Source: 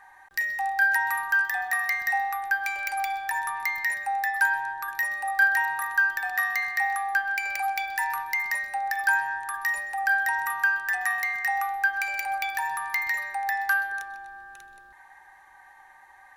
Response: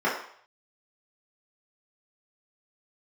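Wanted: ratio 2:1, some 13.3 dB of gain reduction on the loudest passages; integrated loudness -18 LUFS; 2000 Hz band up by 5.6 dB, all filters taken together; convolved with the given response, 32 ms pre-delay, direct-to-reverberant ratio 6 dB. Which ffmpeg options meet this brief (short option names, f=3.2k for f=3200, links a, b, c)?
-filter_complex "[0:a]equalizer=f=2k:t=o:g=7,acompressor=threshold=-39dB:ratio=2,asplit=2[a][b];[1:a]atrim=start_sample=2205,adelay=32[c];[b][c]afir=irnorm=-1:irlink=0,volume=-21dB[d];[a][d]amix=inputs=2:normalize=0,volume=13.5dB"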